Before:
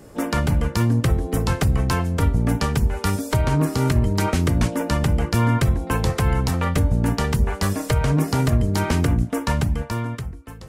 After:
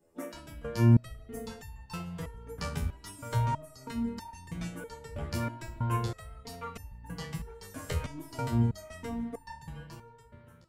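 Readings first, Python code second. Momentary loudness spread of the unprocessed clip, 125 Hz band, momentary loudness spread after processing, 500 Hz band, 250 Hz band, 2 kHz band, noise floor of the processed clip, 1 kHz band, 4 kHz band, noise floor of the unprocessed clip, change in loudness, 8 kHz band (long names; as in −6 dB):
3 LU, −12.5 dB, 16 LU, −14.5 dB, −12.0 dB, −16.0 dB, −56 dBFS, −12.5 dB, −15.5 dB, −37 dBFS, −12.5 dB, −16.0 dB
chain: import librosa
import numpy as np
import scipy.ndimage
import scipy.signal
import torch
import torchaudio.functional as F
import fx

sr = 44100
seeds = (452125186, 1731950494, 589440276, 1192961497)

y = fx.bin_expand(x, sr, power=1.5)
y = fx.rev_spring(y, sr, rt60_s=2.1, pass_ms=(34, 50), chirp_ms=55, drr_db=8.5)
y = fx.resonator_held(y, sr, hz=3.1, low_hz=83.0, high_hz=900.0)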